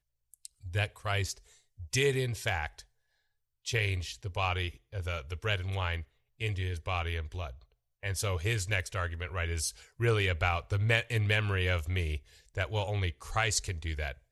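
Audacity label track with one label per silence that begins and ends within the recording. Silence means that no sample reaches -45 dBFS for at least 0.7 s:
2.810000	3.660000	silence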